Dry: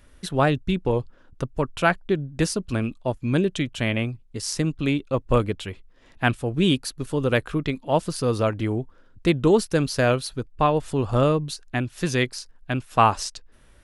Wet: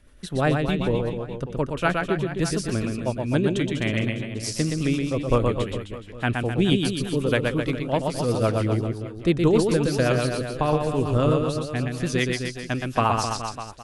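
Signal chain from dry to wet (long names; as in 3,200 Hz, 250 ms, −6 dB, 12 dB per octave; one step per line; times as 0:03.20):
reverse bouncing-ball delay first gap 120 ms, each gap 1.15×, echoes 5
rotating-speaker cabinet horn 8 Hz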